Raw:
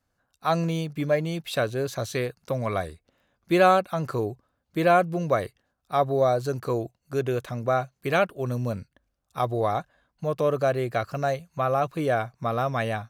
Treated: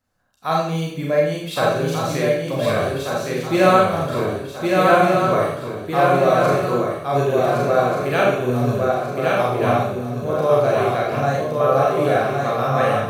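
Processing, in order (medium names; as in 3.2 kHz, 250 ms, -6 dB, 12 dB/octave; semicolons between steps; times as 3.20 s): on a send: shuffle delay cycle 1486 ms, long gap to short 3:1, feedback 44%, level -3 dB; on the sum: Schroeder reverb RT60 0.61 s, combs from 29 ms, DRR -3.5 dB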